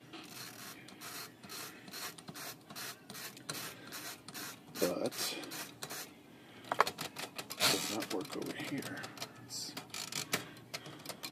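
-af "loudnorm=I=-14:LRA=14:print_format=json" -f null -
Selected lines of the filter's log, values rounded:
"input_i" : "-40.1",
"input_tp" : "-10.7",
"input_lra" : "8.2",
"input_thresh" : "-50.2",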